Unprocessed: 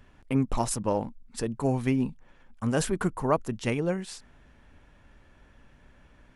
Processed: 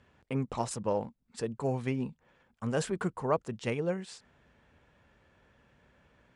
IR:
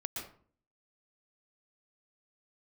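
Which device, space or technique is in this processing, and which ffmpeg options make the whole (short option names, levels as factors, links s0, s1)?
car door speaker: -af "highpass=81,equalizer=f=280:t=q:w=4:g=-5,equalizer=f=480:t=q:w=4:g=4,equalizer=f=5900:t=q:w=4:g=-3,lowpass=f=8500:w=0.5412,lowpass=f=8500:w=1.3066,volume=0.596"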